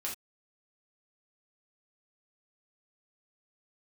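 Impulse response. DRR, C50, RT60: −4.0 dB, 7.0 dB, non-exponential decay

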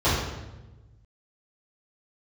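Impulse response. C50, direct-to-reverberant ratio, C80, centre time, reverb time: 0.5 dB, −13.5 dB, 3.5 dB, 70 ms, 1.1 s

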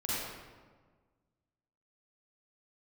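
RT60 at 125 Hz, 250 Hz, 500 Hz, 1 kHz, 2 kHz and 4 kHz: 1.9, 1.7, 1.6, 1.4, 1.1, 0.90 seconds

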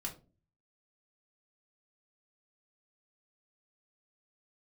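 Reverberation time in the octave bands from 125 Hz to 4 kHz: 0.70, 0.55, 0.40, 0.30, 0.20, 0.20 seconds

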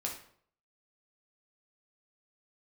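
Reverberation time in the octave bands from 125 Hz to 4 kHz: 0.65, 0.60, 0.60, 0.55, 0.50, 0.45 seconds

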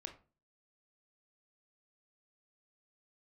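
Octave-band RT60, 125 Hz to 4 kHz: 0.55, 0.45, 0.40, 0.35, 0.30, 0.25 seconds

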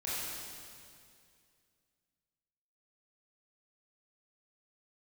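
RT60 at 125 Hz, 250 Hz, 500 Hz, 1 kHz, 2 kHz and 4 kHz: 2.7, 2.5, 2.4, 2.2, 2.2, 2.2 seconds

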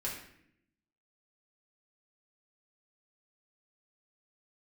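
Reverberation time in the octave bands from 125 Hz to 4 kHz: 1.0, 1.1, 0.80, 0.60, 0.75, 0.55 seconds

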